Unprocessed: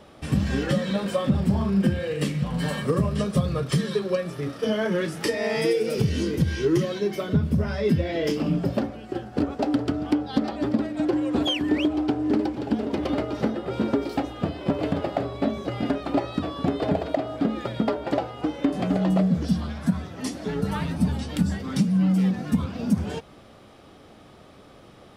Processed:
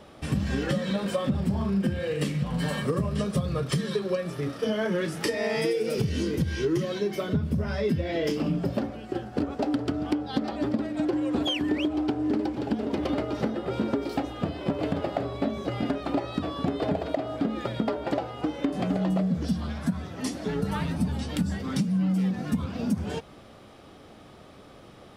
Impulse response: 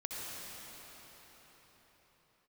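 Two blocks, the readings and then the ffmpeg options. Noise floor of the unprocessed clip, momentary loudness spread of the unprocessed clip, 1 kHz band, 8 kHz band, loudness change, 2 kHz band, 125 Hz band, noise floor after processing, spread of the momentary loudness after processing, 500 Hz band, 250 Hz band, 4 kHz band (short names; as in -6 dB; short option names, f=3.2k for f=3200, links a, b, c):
-49 dBFS, 5 LU, -2.5 dB, n/a, -3.0 dB, -2.0 dB, -3.5 dB, -49 dBFS, 4 LU, -2.5 dB, -3.5 dB, -2.0 dB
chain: -af "acompressor=threshold=-24dB:ratio=2.5"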